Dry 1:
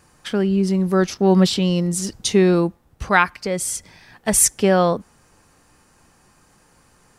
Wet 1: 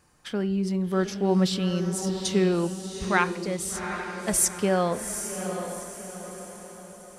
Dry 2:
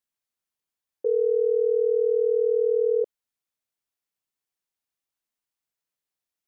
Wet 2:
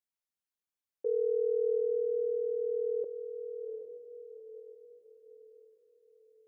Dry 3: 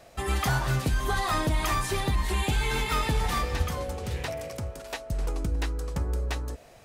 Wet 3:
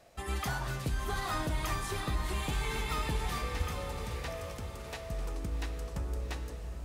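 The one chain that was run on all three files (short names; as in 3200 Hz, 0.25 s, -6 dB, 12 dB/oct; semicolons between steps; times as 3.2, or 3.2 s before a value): de-hum 129.8 Hz, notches 29; on a send: diffused feedback echo 0.785 s, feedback 45%, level -7.5 dB; on the sum: gain -7.5 dB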